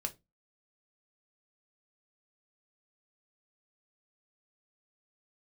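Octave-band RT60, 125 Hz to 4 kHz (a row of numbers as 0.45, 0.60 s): 0.35, 0.30, 0.25, 0.20, 0.15, 0.15 s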